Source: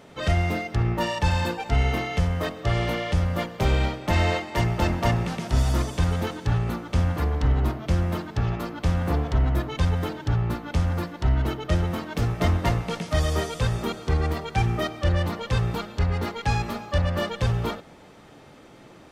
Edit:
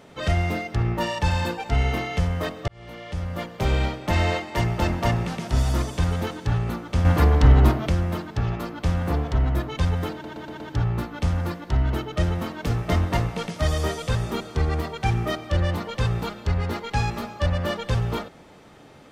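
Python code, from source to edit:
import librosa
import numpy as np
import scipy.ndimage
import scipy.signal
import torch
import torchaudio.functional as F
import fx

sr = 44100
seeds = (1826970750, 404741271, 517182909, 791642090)

y = fx.edit(x, sr, fx.fade_in_span(start_s=2.68, length_s=1.08),
    fx.clip_gain(start_s=7.05, length_s=0.84, db=7.5),
    fx.stutter(start_s=10.12, slice_s=0.12, count=5), tone=tone)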